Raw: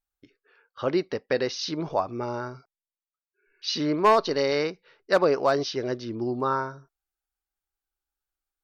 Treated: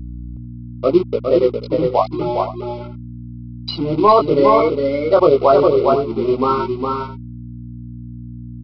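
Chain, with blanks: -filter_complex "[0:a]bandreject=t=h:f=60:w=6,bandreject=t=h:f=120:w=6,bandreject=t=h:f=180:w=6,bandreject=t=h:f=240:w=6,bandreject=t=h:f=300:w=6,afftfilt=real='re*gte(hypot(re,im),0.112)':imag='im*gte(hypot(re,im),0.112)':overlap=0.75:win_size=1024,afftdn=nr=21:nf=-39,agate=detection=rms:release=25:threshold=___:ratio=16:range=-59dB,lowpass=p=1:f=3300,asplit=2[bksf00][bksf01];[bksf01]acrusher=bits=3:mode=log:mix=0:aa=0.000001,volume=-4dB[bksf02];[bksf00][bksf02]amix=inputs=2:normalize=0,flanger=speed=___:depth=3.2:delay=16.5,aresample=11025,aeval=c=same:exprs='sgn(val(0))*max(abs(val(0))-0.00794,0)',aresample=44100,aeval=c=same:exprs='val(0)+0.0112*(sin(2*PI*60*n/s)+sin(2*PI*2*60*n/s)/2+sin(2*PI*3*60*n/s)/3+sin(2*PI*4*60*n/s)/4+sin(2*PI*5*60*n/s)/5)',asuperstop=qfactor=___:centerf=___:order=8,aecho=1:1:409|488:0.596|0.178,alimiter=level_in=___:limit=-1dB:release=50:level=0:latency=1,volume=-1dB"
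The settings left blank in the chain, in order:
-47dB, 0.83, 2.8, 1700, 11.5dB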